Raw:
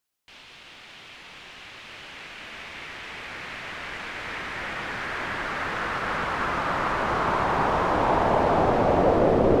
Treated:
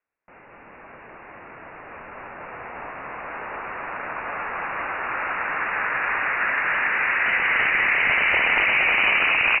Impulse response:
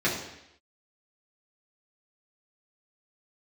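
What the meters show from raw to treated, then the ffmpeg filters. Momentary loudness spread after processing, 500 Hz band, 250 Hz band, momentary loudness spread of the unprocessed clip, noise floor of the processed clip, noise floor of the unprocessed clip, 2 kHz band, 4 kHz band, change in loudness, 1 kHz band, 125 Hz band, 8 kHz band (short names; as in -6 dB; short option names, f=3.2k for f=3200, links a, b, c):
19 LU, -10.5 dB, -13.0 dB, 21 LU, -48 dBFS, -48 dBFS, +11.0 dB, +5.0 dB, +4.5 dB, -2.5 dB, -14.5 dB, under -30 dB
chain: -filter_complex "[0:a]flanger=delay=5.9:depth=3:regen=86:speed=1.2:shape=sinusoidal,highpass=f=730:p=1,aeval=exprs='(mod(12.6*val(0)+1,2)-1)/12.6':c=same,lowpass=f=2.6k:t=q:w=0.5098,lowpass=f=2.6k:t=q:w=0.6013,lowpass=f=2.6k:t=q:w=0.9,lowpass=f=2.6k:t=q:w=2.563,afreqshift=-3000,asplit=2[a][b];[b]asplit=7[c][d][e][f][g][h][i];[c]adelay=230,afreqshift=-57,volume=-4dB[j];[d]adelay=460,afreqshift=-114,volume=-9.2dB[k];[e]adelay=690,afreqshift=-171,volume=-14.4dB[l];[f]adelay=920,afreqshift=-228,volume=-19.6dB[m];[g]adelay=1150,afreqshift=-285,volume=-24.8dB[n];[h]adelay=1380,afreqshift=-342,volume=-30dB[o];[i]adelay=1610,afreqshift=-399,volume=-35.2dB[p];[j][k][l][m][n][o][p]amix=inputs=7:normalize=0[q];[a][q]amix=inputs=2:normalize=0,volume=8.5dB"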